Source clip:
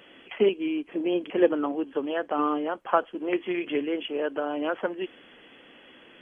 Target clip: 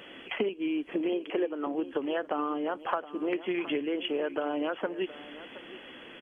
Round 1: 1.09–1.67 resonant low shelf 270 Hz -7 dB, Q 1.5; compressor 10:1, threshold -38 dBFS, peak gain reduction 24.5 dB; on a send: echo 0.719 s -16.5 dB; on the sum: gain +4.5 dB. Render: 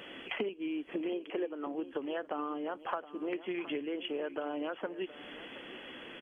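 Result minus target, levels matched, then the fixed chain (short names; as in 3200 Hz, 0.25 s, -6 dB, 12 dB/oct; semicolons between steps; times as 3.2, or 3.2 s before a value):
compressor: peak gain reduction +6 dB
1.09–1.67 resonant low shelf 270 Hz -7 dB, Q 1.5; compressor 10:1, threshold -31.5 dBFS, peak gain reduction 19 dB; on a send: echo 0.719 s -16.5 dB; on the sum: gain +4.5 dB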